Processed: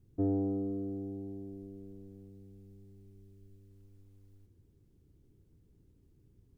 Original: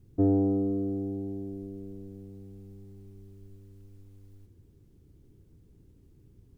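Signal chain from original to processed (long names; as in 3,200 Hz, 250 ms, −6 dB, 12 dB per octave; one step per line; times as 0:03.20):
0:02.29–0:03.71: parametric band 990 Hz −5.5 dB 0.96 octaves
level −7 dB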